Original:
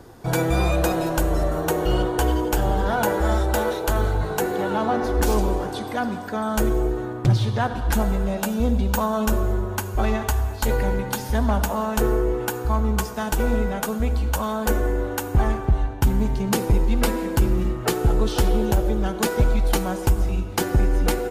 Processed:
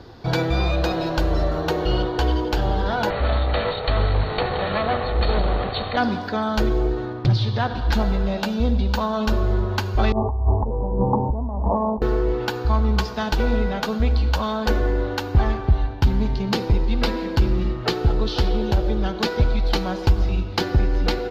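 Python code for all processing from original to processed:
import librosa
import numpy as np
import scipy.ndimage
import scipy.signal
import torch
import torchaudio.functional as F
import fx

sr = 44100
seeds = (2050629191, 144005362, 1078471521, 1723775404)

y = fx.chain(x, sr, fx.lower_of_two(delay_ms=1.6),
    fx.brickwall_lowpass(high_hz=4500.0), at=(3.1, 5.97))
y = fx.chain(y, sr, fx.steep_lowpass(hz=1100.0, slope=96),
    fx.over_compress(threshold_db=-25.0, ratio=-0.5), at=(10.12, 12.02))
y = fx.high_shelf_res(y, sr, hz=6300.0, db=-13.5, q=3.0)
y = fx.rider(y, sr, range_db=10, speed_s=0.5)
y = fx.peak_eq(y, sr, hz=81.0, db=4.5, octaves=0.77)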